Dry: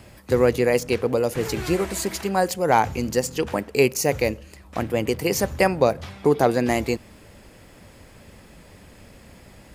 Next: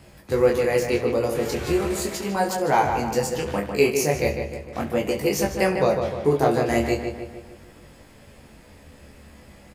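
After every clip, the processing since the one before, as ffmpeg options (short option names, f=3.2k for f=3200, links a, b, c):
-filter_complex "[0:a]asplit=2[a][b];[b]aecho=0:1:14|69:0.531|0.2[c];[a][c]amix=inputs=2:normalize=0,flanger=delay=20:depth=6.3:speed=0.38,asplit=2[d][e];[e]adelay=151,lowpass=f=3.2k:p=1,volume=-6dB,asplit=2[f][g];[g]adelay=151,lowpass=f=3.2k:p=1,volume=0.53,asplit=2[h][i];[i]adelay=151,lowpass=f=3.2k:p=1,volume=0.53,asplit=2[j][k];[k]adelay=151,lowpass=f=3.2k:p=1,volume=0.53,asplit=2[l][m];[m]adelay=151,lowpass=f=3.2k:p=1,volume=0.53,asplit=2[n][o];[o]adelay=151,lowpass=f=3.2k:p=1,volume=0.53,asplit=2[p][q];[q]adelay=151,lowpass=f=3.2k:p=1,volume=0.53[r];[f][h][j][l][n][p][r]amix=inputs=7:normalize=0[s];[d][s]amix=inputs=2:normalize=0"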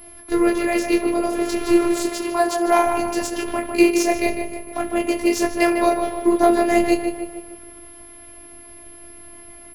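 -af "afftfilt=real='hypot(re,im)*cos(PI*b)':imag='0':win_size=512:overlap=0.75,aeval=exprs='val(0)+0.0251*sin(2*PI*11000*n/s)':c=same,adynamicsmooth=sensitivity=6:basefreq=3.9k,volume=7.5dB"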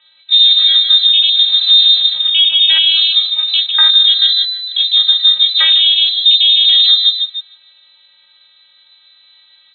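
-af "afwtdn=0.0794,lowpass=f=3.4k:t=q:w=0.5098,lowpass=f=3.4k:t=q:w=0.6013,lowpass=f=3.4k:t=q:w=0.9,lowpass=f=3.4k:t=q:w=2.563,afreqshift=-4000,alimiter=level_in=13dB:limit=-1dB:release=50:level=0:latency=1,volume=-1dB"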